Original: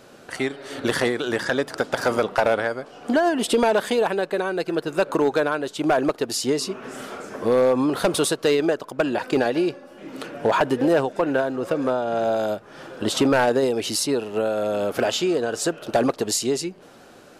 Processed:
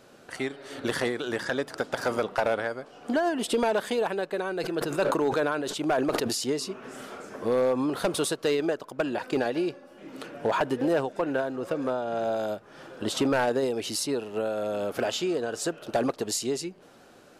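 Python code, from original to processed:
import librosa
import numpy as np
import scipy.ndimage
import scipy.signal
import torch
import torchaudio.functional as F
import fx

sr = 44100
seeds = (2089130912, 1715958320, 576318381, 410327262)

y = fx.sustainer(x, sr, db_per_s=31.0, at=(4.42, 6.44))
y = F.gain(torch.from_numpy(y), -6.0).numpy()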